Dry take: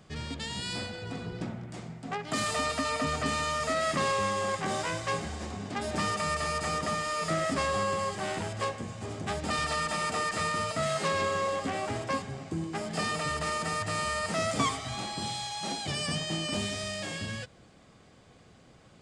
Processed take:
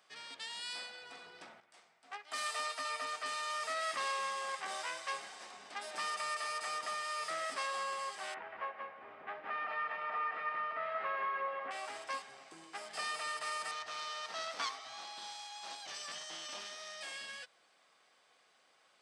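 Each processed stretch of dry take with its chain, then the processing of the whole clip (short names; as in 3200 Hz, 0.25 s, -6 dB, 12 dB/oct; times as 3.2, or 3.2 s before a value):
1.6–3.5 low shelf 220 Hz -6.5 dB + doubler 15 ms -12.5 dB + upward expander, over -44 dBFS
8.34–11.71 LPF 2200 Hz 24 dB/oct + echo 0.181 s -4 dB
13.71–17.01 self-modulated delay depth 0.32 ms + LPF 6600 Hz 24 dB/oct + bell 2400 Hz -4 dB 1.1 oct
whole clip: HPF 870 Hz 12 dB/oct; notch 7000 Hz, Q 7.8; gain -5.5 dB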